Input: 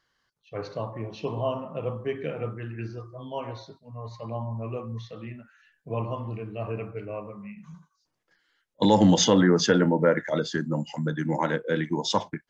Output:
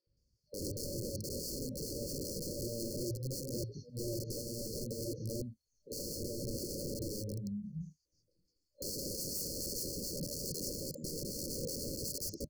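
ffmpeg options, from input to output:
-filter_complex "[0:a]equalizer=f=60:t=o:w=2.1:g=11.5,asplit=2[a][b];[b]aeval=exprs='clip(val(0),-1,0.0531)':c=same,volume=-9dB[c];[a][c]amix=inputs=2:normalize=0,acrossover=split=360|4200[d][e][f];[d]adelay=70[g];[f]adelay=170[h];[g][e][h]amix=inputs=3:normalize=0,alimiter=limit=-15dB:level=0:latency=1:release=319,lowshelf=f=140:g=5,aeval=exprs='(mod(22.4*val(0)+1,2)-1)/22.4':c=same,afftfilt=real='re*(1-between(b*sr/4096,600,4200))':imag='im*(1-between(b*sr/4096,600,4200))':win_size=4096:overlap=0.75,volume=-5dB"

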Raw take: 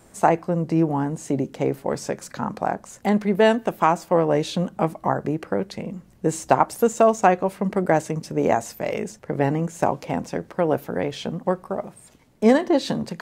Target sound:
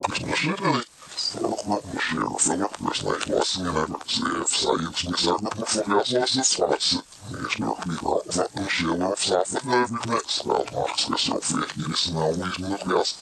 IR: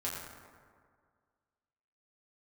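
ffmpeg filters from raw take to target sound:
-filter_complex "[0:a]areverse,equalizer=f=180:t=o:w=0.69:g=-8.5,acrossover=split=110|1600[a][b][c];[a]acompressor=threshold=-52dB:ratio=4[d];[b]acompressor=threshold=-31dB:ratio=4[e];[c]acompressor=threshold=-43dB:ratio=4[f];[d][e][f]amix=inputs=3:normalize=0,aemphasis=mode=production:type=riaa,flanger=delay=6.2:depth=5:regen=-46:speed=0.21:shape=sinusoidal,asetrate=24750,aresample=44100,atempo=1.7818,acrossover=split=520|1500[g][h][i];[h]acontrast=85[j];[i]asplit=2[k][l];[l]adelay=43,volume=-13dB[m];[k][m]amix=inputs=2:normalize=0[n];[g][j][n]amix=inputs=3:normalize=0,acrossover=split=340[o][p];[p]adelay=30[q];[o][q]amix=inputs=2:normalize=0,alimiter=level_in=21.5dB:limit=-1dB:release=50:level=0:latency=1,volume=-8dB"

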